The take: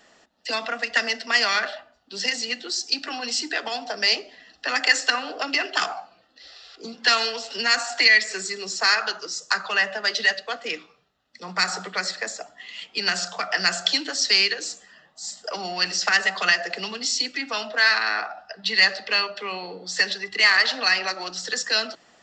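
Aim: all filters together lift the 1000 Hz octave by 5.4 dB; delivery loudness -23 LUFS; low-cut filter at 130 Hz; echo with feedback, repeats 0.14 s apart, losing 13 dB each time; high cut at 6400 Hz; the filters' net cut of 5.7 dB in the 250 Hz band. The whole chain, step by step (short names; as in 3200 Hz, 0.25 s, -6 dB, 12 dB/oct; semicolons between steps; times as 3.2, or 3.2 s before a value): HPF 130 Hz; LPF 6400 Hz; bell 250 Hz -7.5 dB; bell 1000 Hz +8 dB; feedback echo 0.14 s, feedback 22%, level -13 dB; gain -2 dB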